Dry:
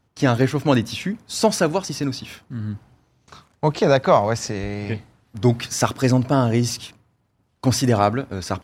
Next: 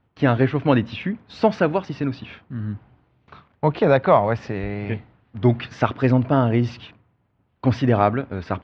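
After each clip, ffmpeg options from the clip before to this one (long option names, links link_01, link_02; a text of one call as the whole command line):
ffmpeg -i in.wav -af "lowpass=frequency=3100:width=0.5412,lowpass=frequency=3100:width=1.3066" out.wav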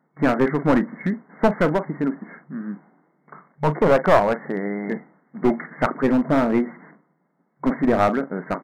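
ffmpeg -i in.wav -filter_complex "[0:a]asplit=2[link_01][link_02];[link_02]adelay=40,volume=-14dB[link_03];[link_01][link_03]amix=inputs=2:normalize=0,afftfilt=real='re*between(b*sr/4096,150,2200)':imag='im*between(b*sr/4096,150,2200)':win_size=4096:overlap=0.75,aeval=exprs='clip(val(0),-1,0.133)':channel_layout=same,volume=2.5dB" out.wav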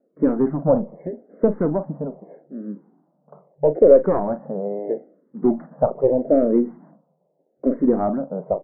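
ffmpeg -i in.wav -filter_complex "[0:a]lowpass=frequency=560:width_type=q:width=3.4,asplit=2[link_01][link_02];[link_02]afreqshift=-0.79[link_03];[link_01][link_03]amix=inputs=2:normalize=1" out.wav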